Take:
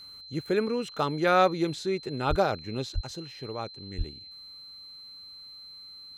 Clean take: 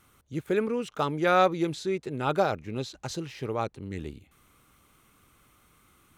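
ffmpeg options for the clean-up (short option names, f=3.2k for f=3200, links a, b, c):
-filter_complex "[0:a]bandreject=f=4.1k:w=30,asplit=3[a][b][c];[a]afade=t=out:st=2.29:d=0.02[d];[b]highpass=f=140:w=0.5412,highpass=f=140:w=1.3066,afade=t=in:st=2.29:d=0.02,afade=t=out:st=2.41:d=0.02[e];[c]afade=t=in:st=2.41:d=0.02[f];[d][e][f]amix=inputs=3:normalize=0,asplit=3[g][h][i];[g]afade=t=out:st=2.94:d=0.02[j];[h]highpass=f=140:w=0.5412,highpass=f=140:w=1.3066,afade=t=in:st=2.94:d=0.02,afade=t=out:st=3.06:d=0.02[k];[i]afade=t=in:st=3.06:d=0.02[l];[j][k][l]amix=inputs=3:normalize=0,asplit=3[m][n][o];[m]afade=t=out:st=3.97:d=0.02[p];[n]highpass=f=140:w=0.5412,highpass=f=140:w=1.3066,afade=t=in:st=3.97:d=0.02,afade=t=out:st=4.09:d=0.02[q];[o]afade=t=in:st=4.09:d=0.02[r];[p][q][r]amix=inputs=3:normalize=0,asetnsamples=n=441:p=0,asendcmd='3 volume volume 5.5dB',volume=0dB"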